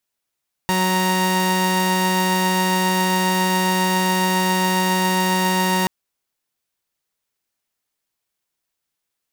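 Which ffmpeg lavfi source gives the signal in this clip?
ffmpeg -f lavfi -i "aevalsrc='0.141*((2*mod(185*t,1)-1)+(2*mod(932.33*t,1)-1))':duration=5.18:sample_rate=44100" out.wav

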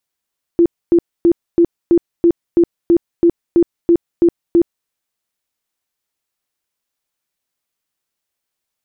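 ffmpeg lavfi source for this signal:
ffmpeg -f lavfi -i "aevalsrc='0.473*sin(2*PI*341*mod(t,0.33))*lt(mod(t,0.33),23/341)':duration=4.29:sample_rate=44100" out.wav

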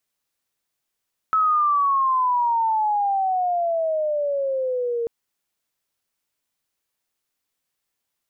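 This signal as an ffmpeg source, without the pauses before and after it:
ffmpeg -f lavfi -i "aevalsrc='pow(10,(-15.5-6*t/3.74)/20)*sin(2*PI*1300*3.74/log(460/1300)*(exp(log(460/1300)*t/3.74)-1))':duration=3.74:sample_rate=44100" out.wav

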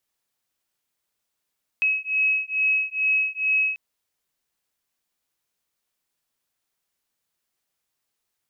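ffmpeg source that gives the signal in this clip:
ffmpeg -f lavfi -i "aevalsrc='0.0708*(sin(2*PI*2560*t)+sin(2*PI*2562.3*t))':duration=1.94:sample_rate=44100" out.wav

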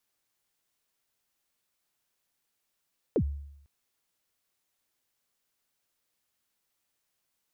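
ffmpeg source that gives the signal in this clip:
ffmpeg -f lavfi -i "aevalsrc='0.1*pow(10,-3*t/0.79)*sin(2*PI*(540*0.071/log(71/540)*(exp(log(71/540)*min(t,0.071)/0.071)-1)+71*max(t-0.071,0)))':duration=0.5:sample_rate=44100" out.wav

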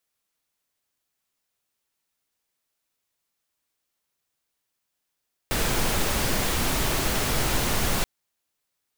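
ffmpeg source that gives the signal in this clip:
ffmpeg -f lavfi -i "anoisesrc=color=pink:amplitude=0.324:duration=2.53:sample_rate=44100:seed=1" out.wav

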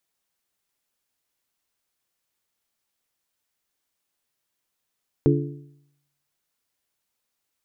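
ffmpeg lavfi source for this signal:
ffmpeg -f lavfi -i "aevalsrc='0.158*pow(10,-3*t/0.79)*sin(2*PI*143*t)+0.141*pow(10,-3*t/0.642)*sin(2*PI*286*t)+0.126*pow(10,-3*t/0.608)*sin(2*PI*343.2*t)+0.112*pow(10,-3*t/0.568)*sin(2*PI*429*t)':duration=1.55:sample_rate=44100" out.wav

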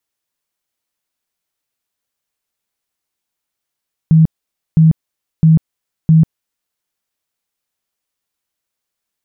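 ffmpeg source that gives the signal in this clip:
ffmpeg -f lavfi -i "aevalsrc='0.596*sin(2*PI*160*mod(t,0.66))*lt(mod(t,0.66),23/160)':duration=2.64:sample_rate=44100" out.wav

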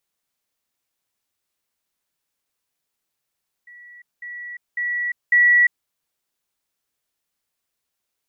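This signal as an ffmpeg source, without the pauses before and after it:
ffmpeg -f lavfi -i "aevalsrc='pow(10,(-41+10*floor(t/0.55))/20)*sin(2*PI*1940*t)*clip(min(mod(t,0.55),0.35-mod(t,0.55))/0.005,0,1)':duration=2.2:sample_rate=44100" out.wav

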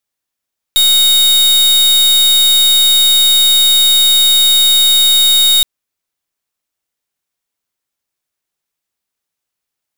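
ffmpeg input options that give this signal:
ffmpeg -f lavfi -i "aevalsrc='0.355*(2*lt(mod(3740*t,1),0.41)-1)':duration=4.87:sample_rate=44100" out.wav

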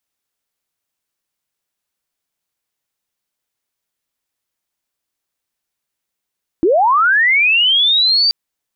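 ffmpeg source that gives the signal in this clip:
ffmpeg -f lavfi -i "aevalsrc='pow(10,(-9-1*t/1.68)/20)*sin(2*PI*(300*t+4400*t*t/(2*1.68)))':duration=1.68:sample_rate=44100" out.wav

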